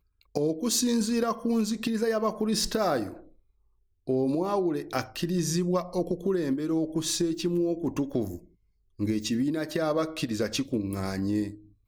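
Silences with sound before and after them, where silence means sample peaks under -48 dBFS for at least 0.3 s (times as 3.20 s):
3.32–4.07 s
8.45–8.99 s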